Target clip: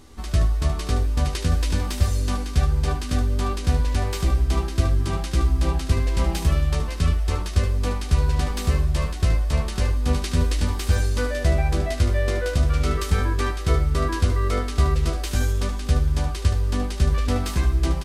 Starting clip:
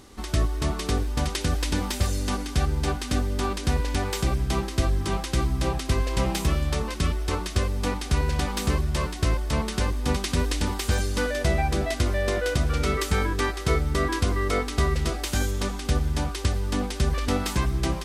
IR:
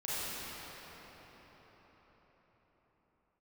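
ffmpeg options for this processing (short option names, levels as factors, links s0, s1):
-filter_complex "[0:a]lowshelf=f=78:g=11.5,asplit=2[s0][s1];[s1]aecho=0:1:12|74:0.562|0.335[s2];[s0][s2]amix=inputs=2:normalize=0,volume=0.708"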